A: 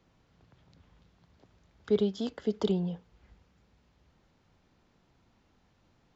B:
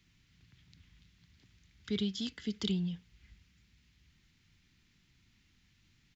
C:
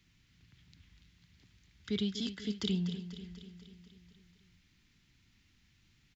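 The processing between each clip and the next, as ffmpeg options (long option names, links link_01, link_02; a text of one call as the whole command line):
ffmpeg -i in.wav -af "firequalizer=gain_entry='entry(120,0);entry(330,-8);entry(530,-22);entry(2000,5)':delay=0.05:min_phase=1" out.wav
ffmpeg -i in.wav -af "aecho=1:1:245|490|735|980|1225|1470|1715:0.266|0.16|0.0958|0.0575|0.0345|0.0207|0.0124" out.wav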